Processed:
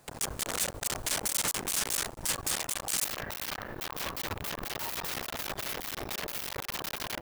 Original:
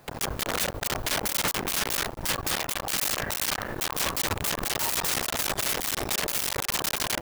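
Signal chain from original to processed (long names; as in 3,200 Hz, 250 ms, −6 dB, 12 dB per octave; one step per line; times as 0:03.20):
parametric band 8,300 Hz +9.5 dB 1.1 octaves, from 0:03.05 −6.5 dB
level −7 dB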